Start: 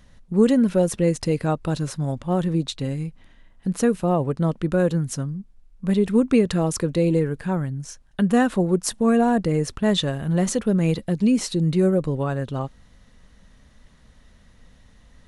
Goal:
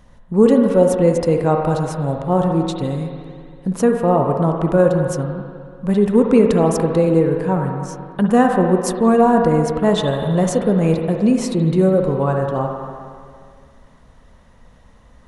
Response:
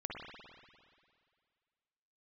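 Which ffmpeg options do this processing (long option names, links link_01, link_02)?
-filter_complex "[0:a]asplit=2[link_01][link_02];[link_02]equalizer=frequency=500:width_type=o:width=1:gain=6,equalizer=frequency=1000:width_type=o:width=1:gain=12,equalizer=frequency=4000:width_type=o:width=1:gain=9[link_03];[1:a]atrim=start_sample=2205,lowpass=2100[link_04];[link_03][link_04]afir=irnorm=-1:irlink=0,volume=-4dB[link_05];[link_01][link_05]amix=inputs=2:normalize=0"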